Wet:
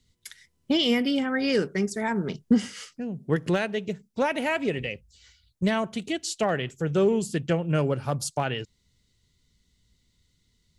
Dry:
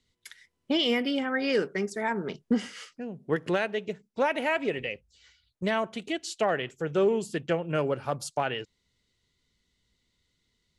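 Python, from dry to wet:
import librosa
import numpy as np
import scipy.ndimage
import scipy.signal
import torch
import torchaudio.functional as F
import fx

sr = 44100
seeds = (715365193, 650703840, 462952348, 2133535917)

y = fx.bass_treble(x, sr, bass_db=10, treble_db=7)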